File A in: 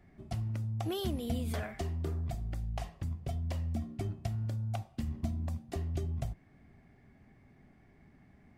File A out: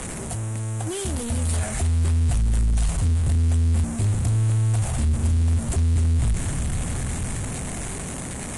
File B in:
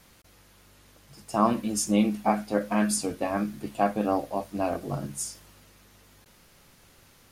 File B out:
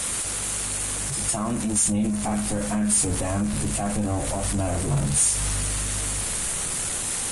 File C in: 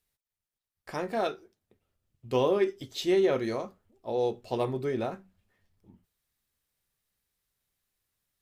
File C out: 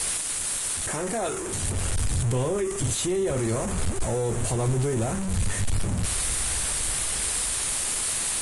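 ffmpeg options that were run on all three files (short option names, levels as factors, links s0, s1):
-filter_complex "[0:a]aeval=exprs='val(0)+0.5*0.0473*sgn(val(0))':c=same,acrossover=split=120[s0][s1];[s0]dynaudnorm=f=190:g=17:m=5.62[s2];[s1]alimiter=limit=0.119:level=0:latency=1:release=61[s3];[s2][s3]amix=inputs=2:normalize=0,aexciter=amount=4.1:drive=9.5:freq=7500,asoftclip=type=tanh:threshold=0.158" -ar 22050 -c:a libvorbis -b:a 32k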